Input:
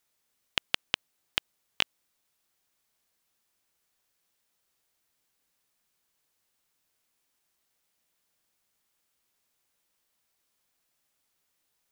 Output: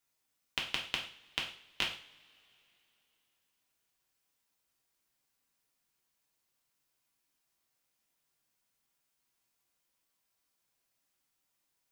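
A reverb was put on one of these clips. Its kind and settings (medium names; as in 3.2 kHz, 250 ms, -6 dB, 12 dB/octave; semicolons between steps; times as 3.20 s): two-slope reverb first 0.44 s, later 3.2 s, from -27 dB, DRR -2 dB; trim -8 dB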